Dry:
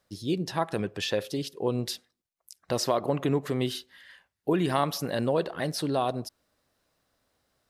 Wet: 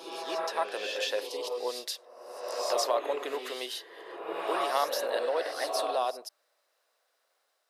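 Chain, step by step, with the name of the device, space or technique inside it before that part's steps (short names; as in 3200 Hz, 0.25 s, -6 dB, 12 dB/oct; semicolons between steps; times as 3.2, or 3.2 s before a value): ghost voice (reverse; reverb RT60 1.4 s, pre-delay 0.112 s, DRR 1.5 dB; reverse; HPF 490 Hz 24 dB/oct); gain -1.5 dB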